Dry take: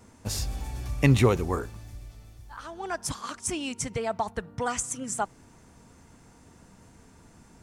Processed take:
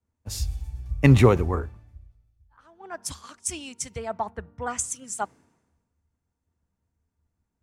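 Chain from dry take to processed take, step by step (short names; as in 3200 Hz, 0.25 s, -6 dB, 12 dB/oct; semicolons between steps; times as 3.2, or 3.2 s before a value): bell 77 Hz +13.5 dB 0.25 oct; three-band expander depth 100%; gain -4.5 dB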